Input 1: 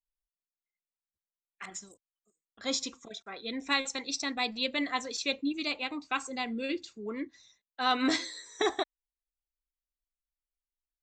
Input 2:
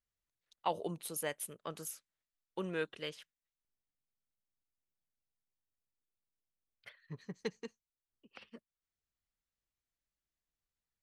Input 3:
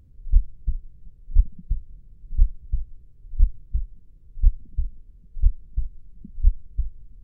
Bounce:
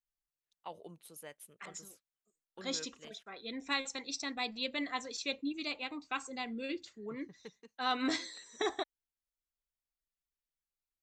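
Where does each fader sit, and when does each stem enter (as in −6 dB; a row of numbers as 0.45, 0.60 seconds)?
−5.5 dB, −11.5 dB, muted; 0.00 s, 0.00 s, muted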